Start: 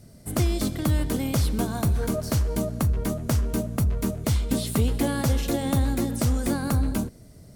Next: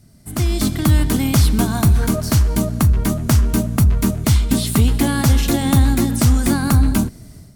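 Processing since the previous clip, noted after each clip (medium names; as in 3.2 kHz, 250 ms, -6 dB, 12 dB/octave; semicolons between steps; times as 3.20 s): peaking EQ 510 Hz -10 dB 0.67 oct; level rider gain up to 11.5 dB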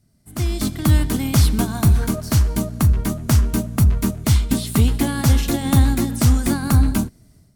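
upward expansion 1.5:1, over -33 dBFS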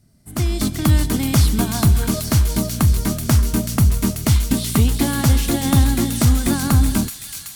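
in parallel at +1.5 dB: compression, threshold -25 dBFS, peak gain reduction 15.5 dB; on the sum: feedback echo behind a high-pass 378 ms, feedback 73%, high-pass 3 kHz, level -4 dB; trim -2 dB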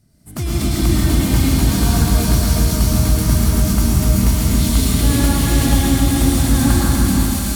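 peak limiter -13.5 dBFS, peak gain reduction 10 dB; plate-style reverb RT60 3.9 s, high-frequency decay 0.8×, pre-delay 90 ms, DRR -7 dB; trim -1 dB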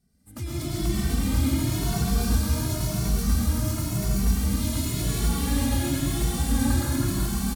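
on a send: delay 329 ms -4.5 dB; on the sum: endless flanger 2.2 ms +0.94 Hz; trim -8 dB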